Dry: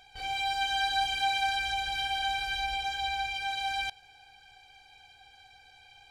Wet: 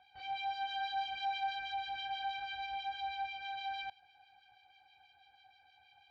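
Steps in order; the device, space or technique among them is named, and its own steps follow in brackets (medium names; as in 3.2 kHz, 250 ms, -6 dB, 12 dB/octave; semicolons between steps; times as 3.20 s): guitar amplifier with harmonic tremolo (harmonic tremolo 6.2 Hz, crossover 1.8 kHz; saturation -26.5 dBFS, distortion -18 dB; cabinet simulation 100–4300 Hz, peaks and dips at 140 Hz -7 dB, 250 Hz -5 dB, 450 Hz -10 dB, 770 Hz +5 dB); trim -6.5 dB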